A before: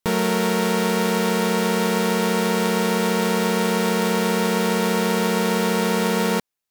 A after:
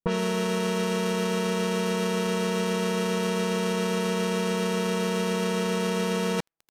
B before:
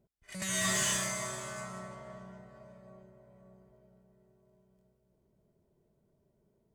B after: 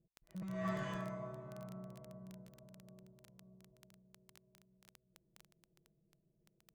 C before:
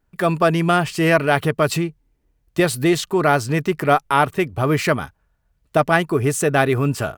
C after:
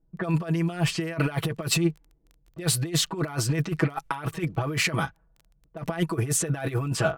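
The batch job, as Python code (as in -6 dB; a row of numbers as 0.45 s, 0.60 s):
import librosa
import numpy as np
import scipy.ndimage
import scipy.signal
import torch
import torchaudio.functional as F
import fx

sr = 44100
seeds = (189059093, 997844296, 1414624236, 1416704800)

y = fx.env_lowpass(x, sr, base_hz=440.0, full_db=-15.5)
y = fx.over_compress(y, sr, threshold_db=-22.0, ratio=-0.5)
y = y + 0.97 * np.pad(y, (int(6.1 * sr / 1000.0), 0))[:len(y)]
y = fx.dmg_crackle(y, sr, seeds[0], per_s=12.0, level_db=-32.0)
y = y * 10.0 ** (-6.5 / 20.0)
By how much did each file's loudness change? -6.0 LU, -12.5 LU, -8.0 LU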